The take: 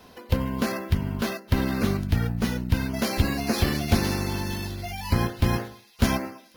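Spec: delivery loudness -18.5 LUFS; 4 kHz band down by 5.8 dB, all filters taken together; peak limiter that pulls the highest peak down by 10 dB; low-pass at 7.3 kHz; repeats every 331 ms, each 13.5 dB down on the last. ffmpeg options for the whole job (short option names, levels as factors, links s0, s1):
-af "lowpass=7300,equalizer=f=4000:t=o:g=-7,alimiter=limit=0.126:level=0:latency=1,aecho=1:1:331|662:0.211|0.0444,volume=3.55"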